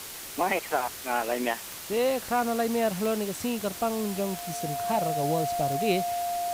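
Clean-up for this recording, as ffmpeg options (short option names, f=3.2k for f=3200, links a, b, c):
-af "adeclick=t=4,bandreject=f=700:w=30,afwtdn=0.011"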